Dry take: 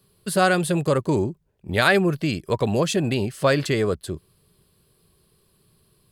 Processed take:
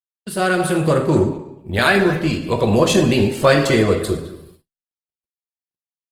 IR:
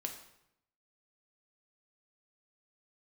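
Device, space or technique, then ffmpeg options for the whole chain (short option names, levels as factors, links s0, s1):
speakerphone in a meeting room: -filter_complex "[1:a]atrim=start_sample=2205[s0];[0:a][s0]afir=irnorm=-1:irlink=0,asplit=2[s1][s2];[s2]adelay=210,highpass=300,lowpass=3400,asoftclip=type=hard:threshold=0.224,volume=0.251[s3];[s1][s3]amix=inputs=2:normalize=0,dynaudnorm=f=170:g=7:m=3.98,agate=range=0.00158:threshold=0.00708:ratio=16:detection=peak" -ar 48000 -c:a libopus -b:a 20k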